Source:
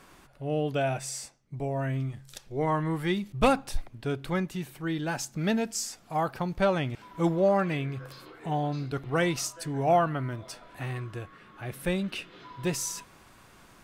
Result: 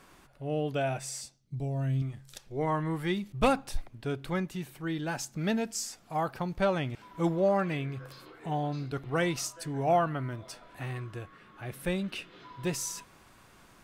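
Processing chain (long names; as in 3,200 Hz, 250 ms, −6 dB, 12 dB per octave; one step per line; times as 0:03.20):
0:01.21–0:02.02: octave-band graphic EQ 125/500/1,000/2,000/4,000 Hz +5/−4/−7/−8/+6 dB
level −2.5 dB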